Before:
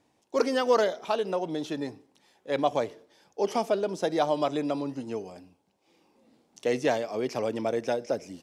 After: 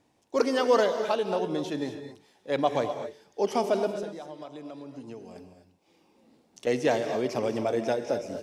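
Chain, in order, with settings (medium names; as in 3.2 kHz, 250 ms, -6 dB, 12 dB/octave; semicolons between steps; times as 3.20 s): bass shelf 180 Hz +3.5 dB; 3.90–6.67 s: compression 16:1, threshold -38 dBFS, peak gain reduction 19 dB; gated-style reverb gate 270 ms rising, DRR 7.5 dB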